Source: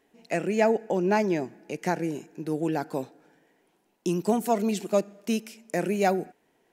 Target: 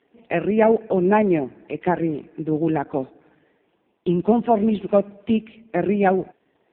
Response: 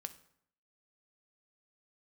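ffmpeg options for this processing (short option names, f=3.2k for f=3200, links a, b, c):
-af "volume=7dB" -ar 8000 -c:a libopencore_amrnb -b:a 4750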